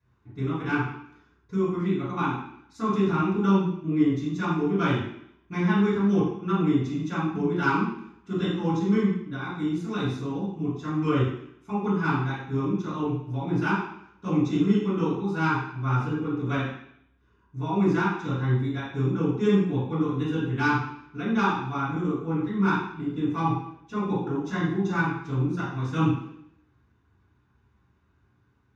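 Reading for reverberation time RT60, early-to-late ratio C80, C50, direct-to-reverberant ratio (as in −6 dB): 0.70 s, 4.5 dB, 0.5 dB, −13.5 dB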